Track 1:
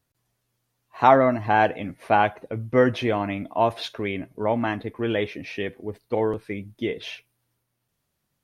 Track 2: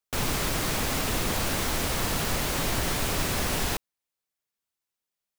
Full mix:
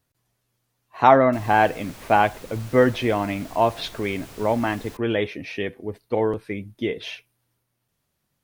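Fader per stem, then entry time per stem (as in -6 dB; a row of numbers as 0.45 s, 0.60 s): +1.5 dB, -16.0 dB; 0.00 s, 1.20 s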